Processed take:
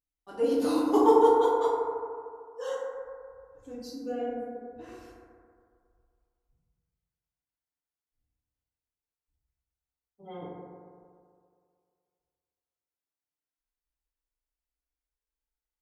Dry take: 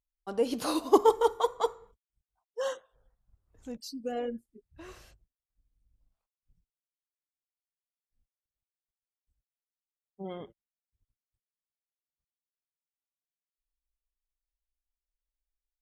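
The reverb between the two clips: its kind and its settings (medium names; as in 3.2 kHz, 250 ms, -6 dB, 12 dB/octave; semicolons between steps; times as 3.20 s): FDN reverb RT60 2.2 s, low-frequency decay 0.85×, high-frequency decay 0.25×, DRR -9 dB; trim -9.5 dB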